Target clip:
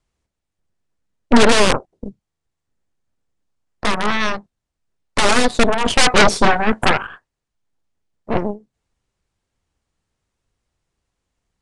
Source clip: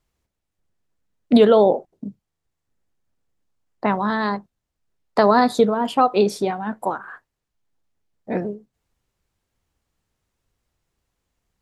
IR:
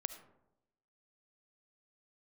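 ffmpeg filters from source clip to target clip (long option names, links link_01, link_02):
-filter_complex "[0:a]acrossover=split=480|1600[link_01][link_02][link_03];[link_02]aeval=exprs='(mod(7.5*val(0)+1,2)-1)/7.5':channel_layout=same[link_04];[link_01][link_04][link_03]amix=inputs=3:normalize=0,aeval=exprs='0.708*(cos(1*acos(clip(val(0)/0.708,-1,1)))-cos(1*PI/2))+0.251*(cos(8*acos(clip(val(0)/0.708,-1,1)))-cos(8*PI/2))':channel_layout=same,asettb=1/sr,asplit=3[link_05][link_06][link_07];[link_05]atrim=end=5.864[link_08];[link_06]atrim=start=5.86:end=7.07,asetpts=PTS-STARTPTS,afade=type=in:duration=0.004:curve=qsin,afade=type=out:start_time=1.206:duration=0.004:curve=qsin,aeval=exprs='0.631*sin(PI/2*2*val(0)/0.631)':channel_layout=same[link_09];[link_07]atrim=start=7.066[link_10];[link_08][link_09]acrossfade=duration=0.004:curve1=hsin:curve2=qsin[link_11];[link_11][link_10]acrossfade=duration=0.004:curve1=qsin:curve2=hsin,aresample=22050,aresample=44100"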